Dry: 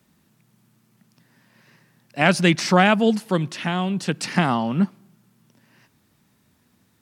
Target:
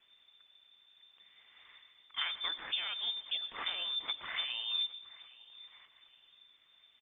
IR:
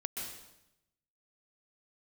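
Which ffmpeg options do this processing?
-filter_complex "[0:a]acompressor=threshold=0.0282:ratio=10,afreqshift=-230,aecho=1:1:816|1632|2448:0.1|0.036|0.013,asplit=2[s0][s1];[1:a]atrim=start_sample=2205,asetrate=57330,aresample=44100,highshelf=f=4600:g=8.5[s2];[s1][s2]afir=irnorm=-1:irlink=0,volume=0.299[s3];[s0][s3]amix=inputs=2:normalize=0,lowpass=f=3100:t=q:w=0.5098,lowpass=f=3100:t=q:w=0.6013,lowpass=f=3100:t=q:w=0.9,lowpass=f=3100:t=q:w=2.563,afreqshift=-3600,volume=0.668" -ar 48000 -c:a libopus -b:a 16k

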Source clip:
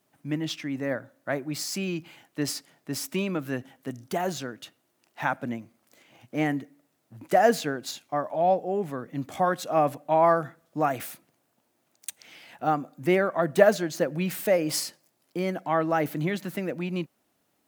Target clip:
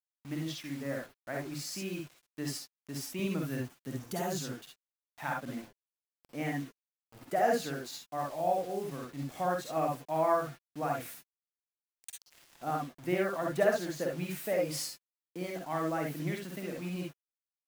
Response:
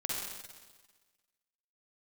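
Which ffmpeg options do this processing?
-filter_complex "[0:a]asettb=1/sr,asplit=3[s0][s1][s2];[s0]atrim=end=3.194[s3];[s1]atrim=start=3.19:end=4.55,asetpts=PTS-STARTPTS,afade=t=in:d=0.004:c=qsin,afade=t=out:st=1.356:d=0.004:c=qsin,bass=f=250:g=8,treble=f=4000:g=8[s4];[s2]atrim=start=4.546[s5];[s3][s4]acrossfade=d=0.004:c1=hsin:c2=qsin[s6];[s6][s5]acrossfade=d=0.004:c1=qsin:c2=hsin,acrusher=bits=6:mix=0:aa=0.000001[s7];[1:a]atrim=start_sample=2205,atrim=end_sample=3528[s8];[s7][s8]afir=irnorm=-1:irlink=0,volume=0.355"

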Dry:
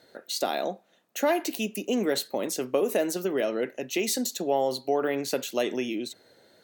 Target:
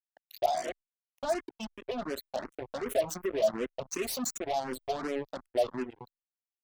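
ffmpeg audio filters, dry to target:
-filter_complex "[0:a]asettb=1/sr,asplit=3[s0][s1][s2];[s0]atrim=end=2.884[s3];[s1]atrim=start=2.88:end=5.08,asetpts=PTS-STARTPTS,afade=t=in:d=0.004:c=qsin,afade=t=out:st=2.196:d=0.004:c=qsin,bass=f=250:g=8,treble=f=4000:g=11[s4];[s2]atrim=start=5.076[s5];[s3][s4]acrossfade=d=0.004:c1=hsin:c2=qsin[s6];[s6][s5]acrossfade=d=0.004:c1=qsin:c2=hsin,asoftclip=type=tanh:threshold=0.0841,afftfilt=real='re*gte(hypot(re,im),0.0501)':imag='im*gte(hypot(re,im),0.0501)':win_size=1024:overlap=0.75,equalizer=f=680:w=4.7:g=14,flanger=delay=7.2:depth=1.1:regen=-5:speed=0.97:shape=triangular,acrusher=bits=4:mix=0:aa=0.5,asplit=2[s7][s8];[s8]afreqshift=2.7[s9];[s7][s9]amix=inputs=2:normalize=1,volume=0.841"

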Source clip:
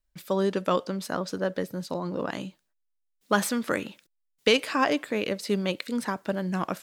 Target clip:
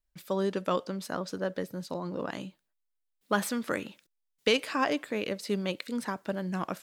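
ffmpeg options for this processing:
-filter_complex "[0:a]asettb=1/sr,asplit=3[s0][s1][s2];[s0]atrim=end=2.454[s3];[s1]atrim=start=2.45:end=3.47,asetpts=PTS-STARTPTS,afade=t=in:d=0.004:c=qsin,afade=t=out:st=1.016:d=0.004:c=qsin,equalizer=f=6300:t=o:w=0.77:g=-4.5[s4];[s2]atrim=start=3.466[s5];[s3][s4]acrossfade=d=0.004:c1=hsin:c2=qsin[s6];[s6][s5]acrossfade=d=0.004:c1=qsin:c2=hsin,volume=0.631"

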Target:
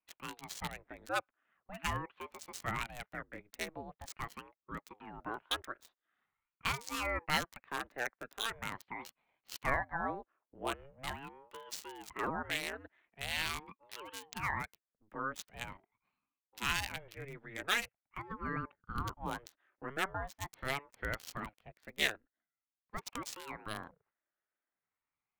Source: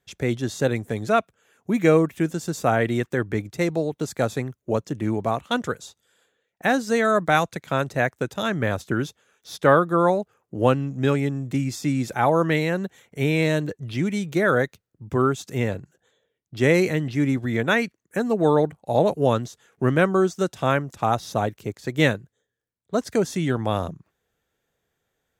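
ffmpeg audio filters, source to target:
-filter_complex "[0:a]aderivative,acrossover=split=5700[s0][s1];[s1]acompressor=threshold=0.00251:ratio=4:attack=1:release=60[s2];[s0][s2]amix=inputs=2:normalize=0,acrossover=split=240|1300|1800[s3][s4][s5][s6];[s6]acrusher=bits=5:mix=0:aa=0.5[s7];[s3][s4][s5][s7]amix=inputs=4:normalize=0,aeval=exprs='val(0)*sin(2*PI*420*n/s+420*0.75/0.43*sin(2*PI*0.43*n/s))':c=same,volume=1.88"

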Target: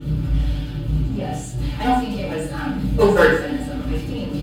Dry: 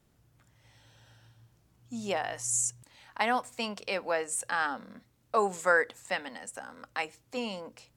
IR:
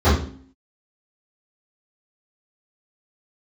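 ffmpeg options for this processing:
-filter_complex "[0:a]aeval=exprs='val(0)+0.5*0.0501*sgn(val(0))':c=same,agate=range=0.158:threshold=0.0794:ratio=16:detection=peak,equalizer=f=780:t=o:w=1.6:g=-11,aecho=1:1:6.8:0.63,atempo=1.8,bandreject=f=1100:w=11[s0];[1:a]atrim=start_sample=2205,asetrate=31311,aresample=44100[s1];[s0][s1]afir=irnorm=-1:irlink=0,adynamicequalizer=threshold=0.0141:dfrequency=5000:dqfactor=0.7:tfrequency=5000:tqfactor=0.7:attack=5:release=100:ratio=0.375:range=2.5:mode=boostabove:tftype=highshelf,volume=0.531"

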